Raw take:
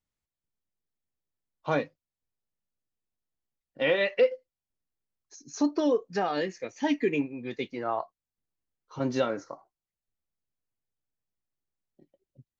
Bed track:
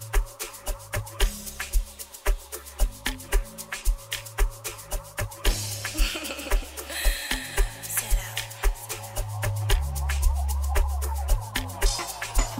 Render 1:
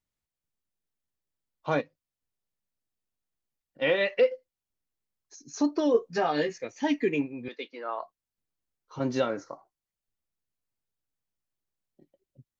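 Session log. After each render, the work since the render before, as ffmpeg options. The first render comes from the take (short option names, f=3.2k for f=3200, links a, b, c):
-filter_complex "[0:a]asplit=3[a][b][c];[a]afade=t=out:st=1.8:d=0.02[d];[b]acompressor=threshold=-59dB:ratio=1.5:attack=3.2:release=140:knee=1:detection=peak,afade=t=in:st=1.8:d=0.02,afade=t=out:st=3.81:d=0.02[e];[c]afade=t=in:st=3.81:d=0.02[f];[d][e][f]amix=inputs=3:normalize=0,asettb=1/sr,asplit=3[g][h][i];[g]atrim=end=5.934[j];[h]atrim=start=5.93:end=6.58,asetpts=PTS-STARTPTS,afade=t=in:d=0.004:c=qsin,afade=t=out:st=0.646:d=0.004:c=qsin,asplit=2[k][l];[l]adelay=13,volume=-2dB[m];[k][m]amix=inputs=2:normalize=0,atrim=end_sample=28665[n];[i]atrim=start=6.576[o];[j][n]acrossfade=d=0.004:c1=hsin:c2=qsin[p];[p][o]acrossfade=d=0.004:c1=qsin:c2=hsin,asettb=1/sr,asplit=3[q][r][s];[q]atrim=end=7.484[t];[r]atrim=start=7.48:end=8.02,asetpts=PTS-STARTPTS,afade=t=in:d=0.004:c=qsin,afade=t=out:st=0.536:d=0.004:c=qsin,highpass=f=330:w=0.5412,highpass=f=330:w=1.3066,equalizer=f=370:t=q:w=4:g=-8,equalizer=f=740:t=q:w=4:g=-9,equalizer=f=2k:t=q:w=4:g=-4,lowpass=f=4.8k:w=0.5412,lowpass=f=4.8k:w=1.3066[u];[s]atrim=start=8.016[v];[t][u]acrossfade=d=0.004:c1=hsin:c2=qsin[w];[w][v]acrossfade=d=0.004:c1=qsin:c2=hsin"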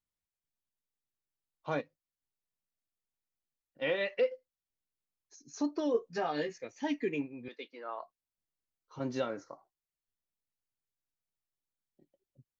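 -af "volume=-7dB"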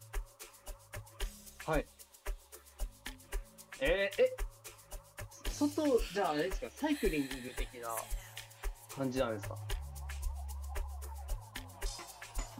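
-filter_complex "[1:a]volume=-16.5dB[a];[0:a][a]amix=inputs=2:normalize=0"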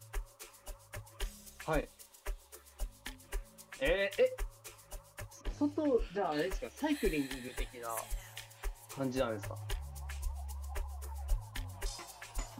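-filter_complex "[0:a]asettb=1/sr,asplit=3[a][b][c];[a]atrim=end=1.794[d];[b]atrim=start=1.79:end=2.27,asetpts=PTS-STARTPTS,afade=t=in:d=0.004:c=qsin,afade=t=out:st=0.476:d=0.004:c=qsin,asplit=2[e][f];[f]adelay=37,volume=-8dB[g];[e][g]amix=inputs=2:normalize=0,atrim=end_sample=21168[h];[c]atrim=start=2.266[i];[d][h]acrossfade=d=0.004:c1=hsin:c2=qsin[j];[j][i]acrossfade=d=0.004:c1=qsin:c2=hsin,asettb=1/sr,asplit=3[k][l][m];[k]atrim=end=5.414[n];[l]atrim=start=5.41:end=6.32,asetpts=PTS-STARTPTS,afade=t=in:d=0.004:c=qsin,afade=t=out:st=0.906:d=0.004:c=qsin,lowpass=f=1.2k:p=1[o];[m]atrim=start=6.316[p];[n][o]acrossfade=d=0.004:c1=hsin:c2=qsin[q];[q][p]acrossfade=d=0.004:c1=qsin:c2=hsin,asettb=1/sr,asplit=3[r][s][t];[r]atrim=end=11.014[u];[s]atrim=start=11.01:end=11.82,asetpts=PTS-STARTPTS,afade=t=in:d=0.004:c=qsin,afade=t=out:st=0.806:d=0.004:c=qsin,asubboost=boost=10:cutoff=150[v];[t]atrim=start=11.816[w];[u][v]acrossfade=d=0.004:c1=hsin:c2=qsin[x];[x][w]acrossfade=d=0.004:c1=qsin:c2=hsin"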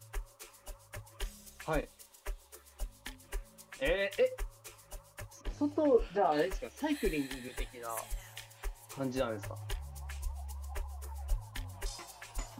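-filter_complex "[0:a]asettb=1/sr,asplit=3[a][b][c];[a]atrim=end=5.714[d];[b]atrim=start=5.71:end=6.45,asetpts=PTS-STARTPTS,afade=t=in:d=0.004:c=qsin,afade=t=out:st=0.736:d=0.004:c=qsin,equalizer=f=720:t=o:w=1.6:g=7[e];[c]atrim=start=6.446[f];[d][e]acrossfade=d=0.004:c1=hsin:c2=qsin[g];[g][f]acrossfade=d=0.004:c1=qsin:c2=hsin"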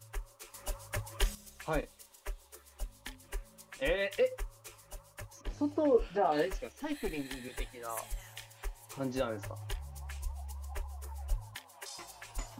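-filter_complex "[0:a]asettb=1/sr,asplit=3[a][b][c];[a]atrim=end=6.724[d];[b]atrim=start=6.72:end=7.26,asetpts=PTS-STARTPTS,afade=t=in:d=0.004:c=qsin,afade=t=out:st=0.536:d=0.004:c=qsin,aeval=exprs='(tanh(17.8*val(0)+0.7)-tanh(0.7))/17.8':c=same[e];[c]atrim=start=7.256[f];[d][e]acrossfade=d=0.004:c1=hsin:c2=qsin[g];[g][f]acrossfade=d=0.004:c1=qsin:c2=hsin,asettb=1/sr,asplit=3[h][i][j];[h]atrim=end=11.554[k];[i]atrim=start=11.55:end=11.98,asetpts=PTS-STARTPTS,afade=t=in:d=0.004:c=qsin,afade=t=out:st=0.426:d=0.004:c=qsin,highpass=530[l];[j]atrim=start=11.976[m];[k][l]acrossfade=d=0.004:c1=hsin:c2=qsin[n];[n][m]acrossfade=d=0.004:c1=qsin:c2=hsin,asplit=3[o][p][q];[o]atrim=end=0.542[r];[p]atrim=start=0.538:end=1.352,asetpts=PTS-STARTPTS,volume=9dB[s];[q]atrim=start=1.348[t];[r][s]acrossfade=d=0.004:c1=hsin:c2=hsin[u];[u][t]acrossfade=d=0.004:c1=hsin:c2=hsin"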